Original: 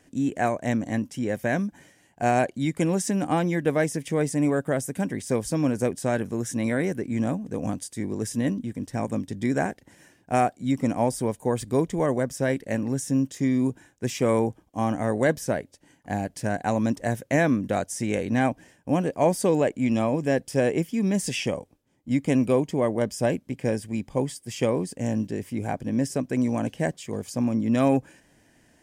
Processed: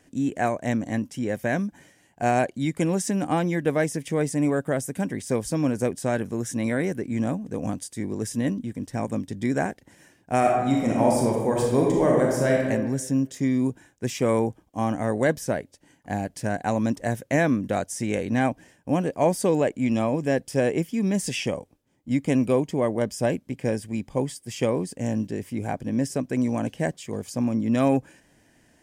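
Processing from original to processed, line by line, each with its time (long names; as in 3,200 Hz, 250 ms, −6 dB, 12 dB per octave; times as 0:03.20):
0:10.38–0:12.61: thrown reverb, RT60 1.2 s, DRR −2 dB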